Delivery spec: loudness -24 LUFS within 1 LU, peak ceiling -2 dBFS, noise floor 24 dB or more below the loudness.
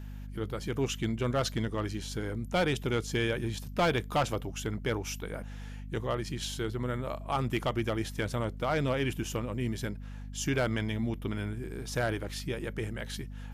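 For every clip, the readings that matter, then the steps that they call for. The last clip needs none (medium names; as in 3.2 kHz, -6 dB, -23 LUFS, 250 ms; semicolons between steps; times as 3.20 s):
clipped samples 0.6%; clipping level -21.5 dBFS; hum 50 Hz; highest harmonic 250 Hz; hum level -39 dBFS; loudness -33.0 LUFS; peak level -21.5 dBFS; loudness target -24.0 LUFS
-> clip repair -21.5 dBFS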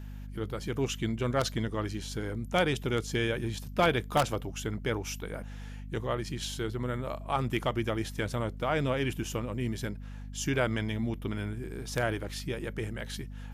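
clipped samples 0.0%; hum 50 Hz; highest harmonic 250 Hz; hum level -39 dBFS
-> hum notches 50/100/150/200/250 Hz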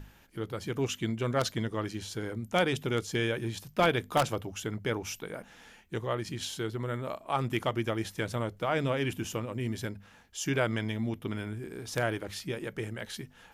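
hum not found; loudness -32.5 LUFS; peak level -11.5 dBFS; loudness target -24.0 LUFS
-> trim +8.5 dB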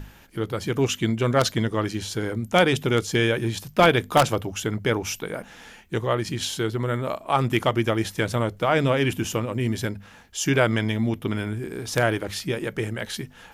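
loudness -24.0 LUFS; peak level -3.0 dBFS; noise floor -49 dBFS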